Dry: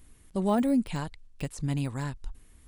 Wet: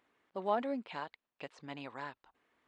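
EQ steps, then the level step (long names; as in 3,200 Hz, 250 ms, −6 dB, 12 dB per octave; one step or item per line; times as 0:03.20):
high-pass filter 650 Hz 12 dB per octave
dynamic equaliser 3,900 Hz, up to +6 dB, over −55 dBFS, Q 0.78
head-to-tape spacing loss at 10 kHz 39 dB
+2.0 dB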